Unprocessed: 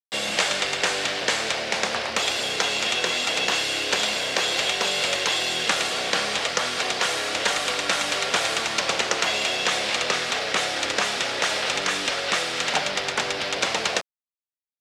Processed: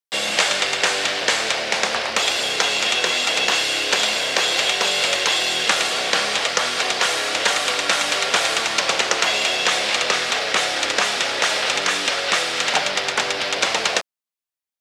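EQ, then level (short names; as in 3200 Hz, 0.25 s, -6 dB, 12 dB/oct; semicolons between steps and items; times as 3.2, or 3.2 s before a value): low shelf 260 Hz -7 dB; +4.5 dB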